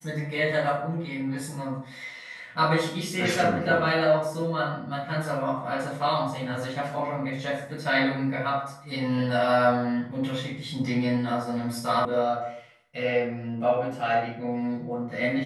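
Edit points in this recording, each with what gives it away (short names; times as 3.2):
12.05 sound cut off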